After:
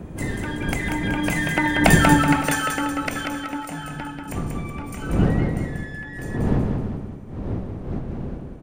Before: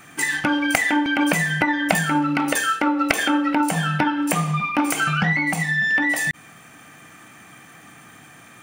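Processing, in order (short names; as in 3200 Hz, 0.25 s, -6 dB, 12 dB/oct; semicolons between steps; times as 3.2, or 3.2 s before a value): Doppler pass-by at 2.02, 9 m/s, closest 2.5 m; wind noise 230 Hz -31 dBFS; feedback echo 0.188 s, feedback 42%, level -5 dB; gain +3.5 dB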